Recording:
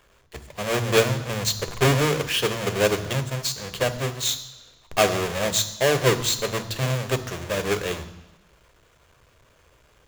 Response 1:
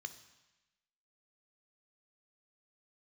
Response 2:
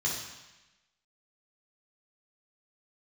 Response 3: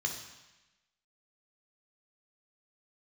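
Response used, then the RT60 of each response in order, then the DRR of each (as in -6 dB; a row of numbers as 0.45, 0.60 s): 1; 1.0, 1.0, 1.0 s; 9.5, -5.5, 1.5 dB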